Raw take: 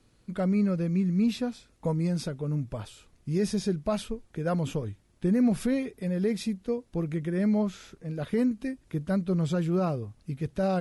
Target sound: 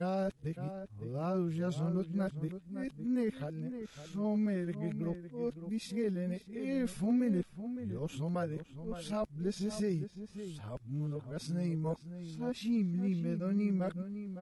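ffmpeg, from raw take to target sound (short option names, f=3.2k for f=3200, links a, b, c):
-filter_complex "[0:a]areverse,atempo=0.75,asplit=2[a][b];[b]adelay=559.8,volume=-10dB,highshelf=f=4k:g=-12.6[c];[a][c]amix=inputs=2:normalize=0,volume=-7.5dB"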